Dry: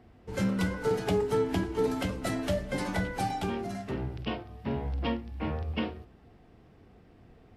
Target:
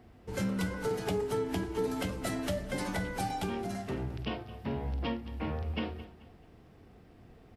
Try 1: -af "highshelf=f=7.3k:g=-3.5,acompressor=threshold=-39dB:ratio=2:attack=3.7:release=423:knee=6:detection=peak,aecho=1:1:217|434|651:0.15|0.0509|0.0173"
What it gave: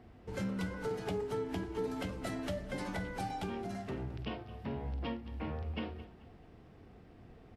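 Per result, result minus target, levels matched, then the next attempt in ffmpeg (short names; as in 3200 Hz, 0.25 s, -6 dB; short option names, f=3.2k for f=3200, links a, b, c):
8000 Hz band -5.0 dB; compressor: peak gain reduction +4.5 dB
-af "highshelf=f=7.3k:g=6.5,acompressor=threshold=-39dB:ratio=2:attack=3.7:release=423:knee=6:detection=peak,aecho=1:1:217|434|651:0.15|0.0509|0.0173"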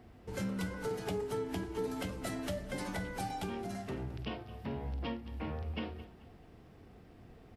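compressor: peak gain reduction +4.5 dB
-af "highshelf=f=7.3k:g=6.5,acompressor=threshold=-30dB:ratio=2:attack=3.7:release=423:knee=6:detection=peak,aecho=1:1:217|434|651:0.15|0.0509|0.0173"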